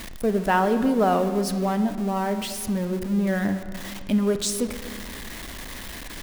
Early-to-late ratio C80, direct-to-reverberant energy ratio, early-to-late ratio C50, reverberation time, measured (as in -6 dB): 11.0 dB, 8.5 dB, 10.0 dB, 1.9 s